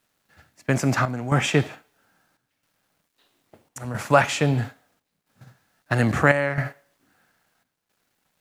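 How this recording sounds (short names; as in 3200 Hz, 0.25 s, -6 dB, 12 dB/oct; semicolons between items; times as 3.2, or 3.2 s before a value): a quantiser's noise floor 12-bit, dither none; chopped level 0.76 Hz, depth 65%, duty 80%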